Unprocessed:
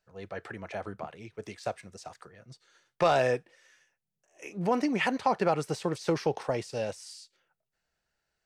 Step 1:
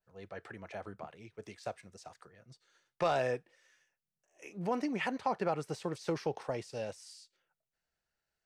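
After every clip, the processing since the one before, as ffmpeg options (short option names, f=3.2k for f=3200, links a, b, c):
-af "adynamicequalizer=threshold=0.01:dfrequency=2500:dqfactor=0.7:tfrequency=2500:tqfactor=0.7:attack=5:release=100:ratio=0.375:range=2:mode=cutabove:tftype=highshelf,volume=-6.5dB"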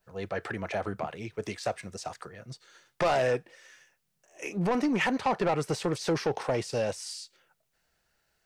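-filter_complex "[0:a]asplit=2[a][b];[b]acompressor=threshold=-40dB:ratio=6,volume=-1dB[c];[a][c]amix=inputs=2:normalize=0,asoftclip=type=tanh:threshold=-28.5dB,volume=8dB"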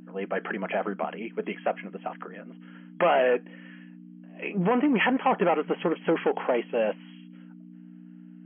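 -af "aeval=exprs='val(0)+0.00891*(sin(2*PI*60*n/s)+sin(2*PI*2*60*n/s)/2+sin(2*PI*3*60*n/s)/3+sin(2*PI*4*60*n/s)/4+sin(2*PI*5*60*n/s)/5)':c=same,afftfilt=real='re*between(b*sr/4096,170,3300)':imag='im*between(b*sr/4096,170,3300)':win_size=4096:overlap=0.75,volume=4dB"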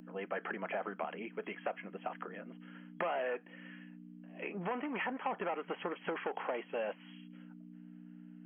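-filter_complex "[0:a]equalizer=f=86:w=0.63:g=-6,acrossover=split=710|2100[a][b][c];[a]acompressor=threshold=-38dB:ratio=4[d];[b]acompressor=threshold=-35dB:ratio=4[e];[c]acompressor=threshold=-50dB:ratio=4[f];[d][e][f]amix=inputs=3:normalize=0,volume=-3.5dB"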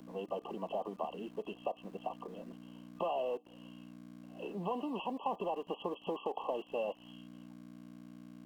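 -filter_complex "[0:a]afftfilt=real='re*(1-between(b*sr/4096,1200,2600))':imag='im*(1-between(b*sr/4096,1200,2600))':win_size=4096:overlap=0.75,acrossover=split=270|670[a][b][c];[a]aeval=exprs='val(0)*gte(abs(val(0)),0.00141)':c=same[d];[d][b][c]amix=inputs=3:normalize=0,volume=1dB"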